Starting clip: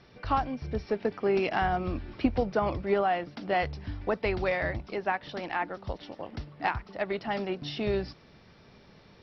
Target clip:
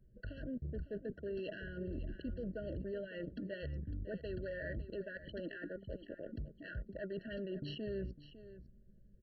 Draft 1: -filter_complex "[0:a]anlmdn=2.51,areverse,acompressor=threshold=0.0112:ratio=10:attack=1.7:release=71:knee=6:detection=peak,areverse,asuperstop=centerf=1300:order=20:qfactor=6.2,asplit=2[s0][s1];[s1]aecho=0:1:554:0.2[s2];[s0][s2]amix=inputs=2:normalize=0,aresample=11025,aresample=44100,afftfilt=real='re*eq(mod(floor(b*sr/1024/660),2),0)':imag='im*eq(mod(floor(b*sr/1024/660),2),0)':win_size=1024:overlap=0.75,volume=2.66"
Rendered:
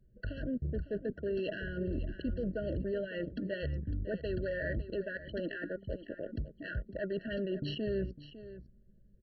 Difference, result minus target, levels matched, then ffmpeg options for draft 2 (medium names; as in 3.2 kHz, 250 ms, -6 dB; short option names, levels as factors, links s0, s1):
compression: peak gain reduction -6.5 dB
-filter_complex "[0:a]anlmdn=2.51,areverse,acompressor=threshold=0.00473:ratio=10:attack=1.7:release=71:knee=6:detection=peak,areverse,asuperstop=centerf=1300:order=20:qfactor=6.2,asplit=2[s0][s1];[s1]aecho=0:1:554:0.2[s2];[s0][s2]amix=inputs=2:normalize=0,aresample=11025,aresample=44100,afftfilt=real='re*eq(mod(floor(b*sr/1024/660),2),0)':imag='im*eq(mod(floor(b*sr/1024/660),2),0)':win_size=1024:overlap=0.75,volume=2.66"